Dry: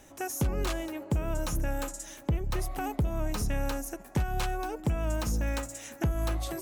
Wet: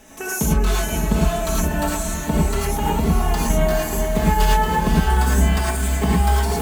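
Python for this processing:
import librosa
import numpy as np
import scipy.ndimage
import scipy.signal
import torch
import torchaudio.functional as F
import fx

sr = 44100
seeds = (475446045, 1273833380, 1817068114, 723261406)

y = fx.pitch_glide(x, sr, semitones=4.0, runs='starting unshifted')
y = y + 0.84 * np.pad(y, (int(4.6 * sr / 1000.0), 0))[:len(y)]
y = fx.echo_diffused(y, sr, ms=500, feedback_pct=41, wet_db=-4.5)
y = fx.rev_gated(y, sr, seeds[0], gate_ms=130, shape='rising', drr_db=-4.0)
y = F.gain(torch.from_numpy(y), 4.5).numpy()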